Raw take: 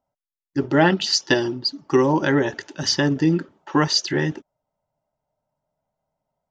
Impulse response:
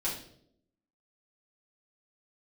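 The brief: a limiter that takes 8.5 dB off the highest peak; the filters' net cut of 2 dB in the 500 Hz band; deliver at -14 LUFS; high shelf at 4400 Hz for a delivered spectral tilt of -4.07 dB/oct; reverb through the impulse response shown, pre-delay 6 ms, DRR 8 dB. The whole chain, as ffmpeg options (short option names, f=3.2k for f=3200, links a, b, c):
-filter_complex "[0:a]equalizer=f=500:t=o:g=-3,highshelf=f=4.4k:g=7.5,alimiter=limit=-10.5dB:level=0:latency=1,asplit=2[a][b];[1:a]atrim=start_sample=2205,adelay=6[c];[b][c]afir=irnorm=-1:irlink=0,volume=-13dB[d];[a][d]amix=inputs=2:normalize=0,volume=7.5dB"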